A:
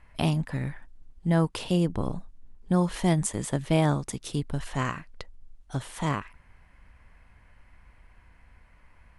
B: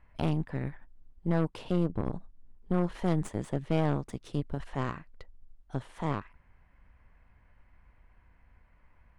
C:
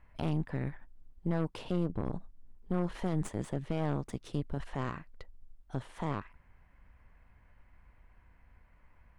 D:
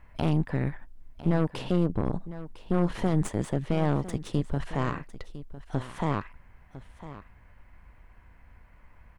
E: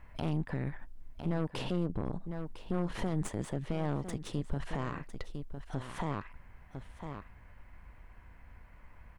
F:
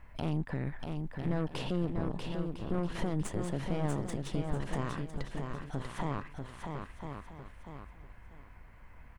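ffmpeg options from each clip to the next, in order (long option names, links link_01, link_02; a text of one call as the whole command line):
ffmpeg -i in.wav -af "aeval=exprs='0.335*(cos(1*acos(clip(val(0)/0.335,-1,1)))-cos(1*PI/2))+0.0376*(cos(8*acos(clip(val(0)/0.335,-1,1)))-cos(8*PI/2))':channel_layout=same,lowpass=frequency=1800:poles=1,volume=-5dB" out.wav
ffmpeg -i in.wav -af "alimiter=limit=-22dB:level=0:latency=1:release=29" out.wav
ffmpeg -i in.wav -af "aecho=1:1:1004:0.178,volume=7dB" out.wav
ffmpeg -i in.wav -af "alimiter=limit=-23dB:level=0:latency=1:release=180" out.wav
ffmpeg -i in.wav -af "aecho=1:1:641|1282|1923|2564:0.562|0.157|0.0441|0.0123" out.wav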